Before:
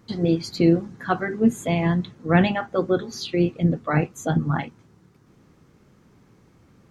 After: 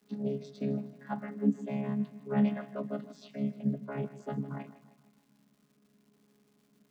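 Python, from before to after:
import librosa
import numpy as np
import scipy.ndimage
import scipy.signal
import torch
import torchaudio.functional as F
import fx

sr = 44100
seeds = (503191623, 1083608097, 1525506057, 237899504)

p1 = fx.chord_vocoder(x, sr, chord='bare fifth', root=49)
p2 = scipy.signal.sosfilt(scipy.signal.butter(6, 170.0, 'highpass', fs=sr, output='sos'), p1)
p3 = fx.dmg_crackle(p2, sr, seeds[0], per_s=420.0, level_db=-52.0)
p4 = p3 + fx.echo_feedback(p3, sr, ms=156, feedback_pct=49, wet_db=-15.0, dry=0)
y = F.gain(torch.from_numpy(p4), -8.0).numpy()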